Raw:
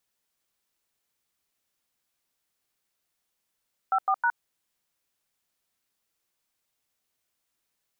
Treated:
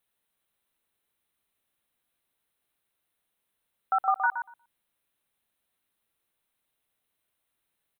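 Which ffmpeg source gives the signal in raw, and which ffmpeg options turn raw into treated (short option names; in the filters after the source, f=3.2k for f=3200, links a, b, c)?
-f lavfi -i "aevalsrc='0.0708*clip(min(mod(t,0.158),0.065-mod(t,0.158))/0.002,0,1)*(eq(floor(t/0.158),0)*(sin(2*PI*770*mod(t,0.158))+sin(2*PI*1336*mod(t,0.158)))+eq(floor(t/0.158),1)*(sin(2*PI*770*mod(t,0.158))+sin(2*PI*1209*mod(t,0.158)))+eq(floor(t/0.158),2)*(sin(2*PI*941*mod(t,0.158))+sin(2*PI*1477*mod(t,0.158))))':d=0.474:s=44100"
-filter_complex "[0:a]superequalizer=14b=0.251:15b=0.282,asplit=2[a][b];[b]adelay=119,lowpass=f=910:p=1,volume=-4dB,asplit=2[c][d];[d]adelay=119,lowpass=f=910:p=1,volume=0.2,asplit=2[e][f];[f]adelay=119,lowpass=f=910:p=1,volume=0.2[g];[a][c][e][g]amix=inputs=4:normalize=0"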